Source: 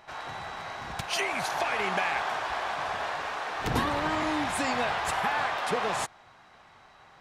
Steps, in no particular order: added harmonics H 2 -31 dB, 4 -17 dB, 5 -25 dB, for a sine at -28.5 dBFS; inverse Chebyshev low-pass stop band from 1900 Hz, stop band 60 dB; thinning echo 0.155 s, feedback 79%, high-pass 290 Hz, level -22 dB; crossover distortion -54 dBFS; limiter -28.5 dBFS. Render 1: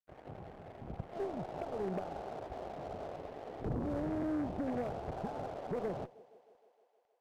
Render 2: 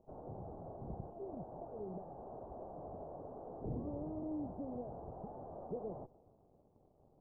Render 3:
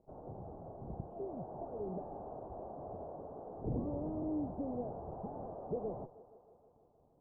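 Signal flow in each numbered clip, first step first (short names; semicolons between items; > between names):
inverse Chebyshev low-pass > crossover distortion > thinning echo > limiter > added harmonics; limiter > thinning echo > added harmonics > crossover distortion > inverse Chebyshev low-pass; crossover distortion > thinning echo > added harmonics > limiter > inverse Chebyshev low-pass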